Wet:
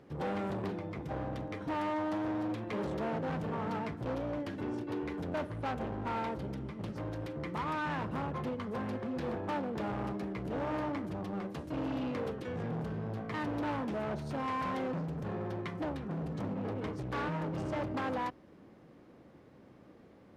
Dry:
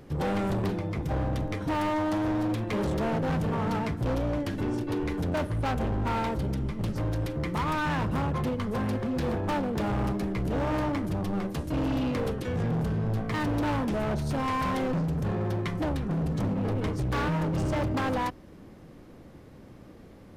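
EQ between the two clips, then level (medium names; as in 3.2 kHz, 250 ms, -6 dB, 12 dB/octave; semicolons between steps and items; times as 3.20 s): high-pass 210 Hz 6 dB/octave; low-pass 2.9 kHz 6 dB/octave; -5.0 dB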